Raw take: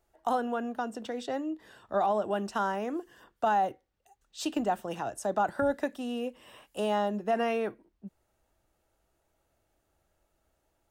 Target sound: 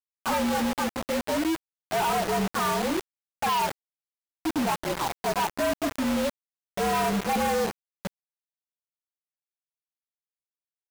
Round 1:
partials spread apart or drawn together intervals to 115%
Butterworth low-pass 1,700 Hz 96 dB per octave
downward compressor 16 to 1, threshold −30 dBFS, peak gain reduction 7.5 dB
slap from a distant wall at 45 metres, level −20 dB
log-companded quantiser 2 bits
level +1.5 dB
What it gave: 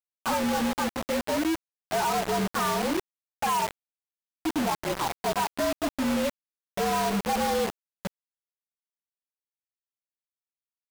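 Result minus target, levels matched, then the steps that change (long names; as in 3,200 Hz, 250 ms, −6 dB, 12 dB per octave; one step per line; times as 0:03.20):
downward compressor: peak gain reduction +7.5 dB
remove: downward compressor 16 to 1, threshold −30 dBFS, peak gain reduction 7.5 dB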